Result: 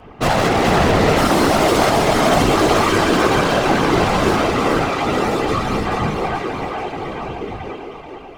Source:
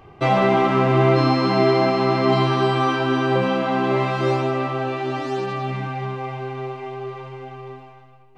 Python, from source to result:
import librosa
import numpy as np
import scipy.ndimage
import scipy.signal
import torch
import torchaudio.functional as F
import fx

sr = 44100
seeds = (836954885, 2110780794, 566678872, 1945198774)

y = fx.tracing_dist(x, sr, depth_ms=0.23)
y = np.clip(y, -10.0 ** (-19.0 / 20.0), 10.0 ** (-19.0 / 20.0))
y = fx.echo_thinned(y, sr, ms=433, feedback_pct=53, hz=150.0, wet_db=-3.5)
y = fx.whisperise(y, sr, seeds[0])
y = y * 10.0 ** (5.5 / 20.0)